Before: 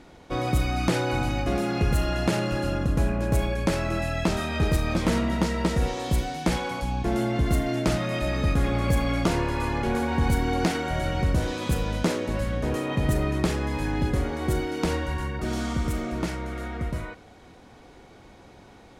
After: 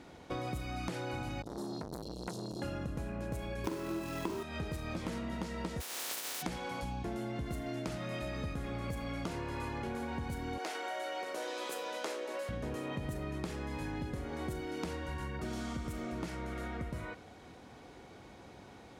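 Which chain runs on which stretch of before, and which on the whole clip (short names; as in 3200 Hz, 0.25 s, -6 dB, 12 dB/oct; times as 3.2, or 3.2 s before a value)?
1.42–2.62 Chebyshev band-stop 400–3800 Hz, order 4 + low shelf 180 Hz -7 dB + core saturation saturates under 1200 Hz
3.64–4.43 companded quantiser 4-bit + doubler 43 ms -5 dB + small resonant body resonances 360/1000 Hz, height 15 dB, ringing for 35 ms
5.8–6.41 spectral contrast lowered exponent 0.14 + HPF 330 Hz + compressor 5:1, threshold -27 dBFS
10.58–12.49 HPF 400 Hz 24 dB/oct + doubler 16 ms -11 dB
whole clip: HPF 61 Hz; compressor, threshold -33 dBFS; gain -3 dB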